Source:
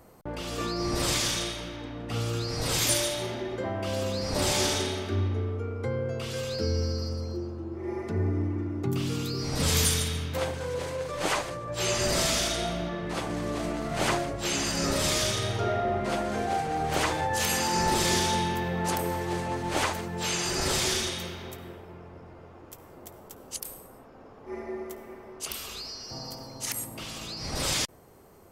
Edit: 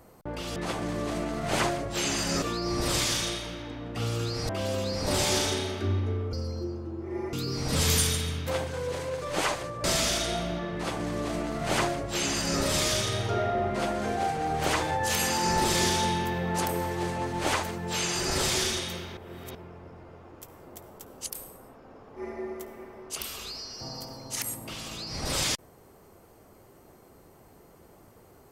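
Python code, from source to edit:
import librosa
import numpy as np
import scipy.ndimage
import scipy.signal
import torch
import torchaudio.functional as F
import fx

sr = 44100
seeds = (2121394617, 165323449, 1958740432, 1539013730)

y = fx.edit(x, sr, fx.cut(start_s=2.63, length_s=1.14),
    fx.cut(start_s=5.61, length_s=1.45),
    fx.cut(start_s=8.06, length_s=1.14),
    fx.cut(start_s=11.71, length_s=0.43),
    fx.duplicate(start_s=13.04, length_s=1.86, to_s=0.56),
    fx.reverse_span(start_s=21.47, length_s=0.38), tone=tone)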